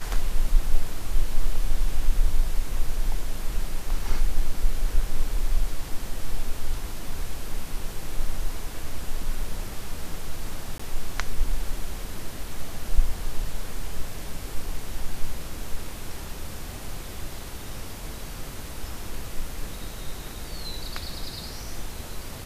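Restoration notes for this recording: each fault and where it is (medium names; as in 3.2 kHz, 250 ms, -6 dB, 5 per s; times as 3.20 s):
10.78–10.79 s: dropout 15 ms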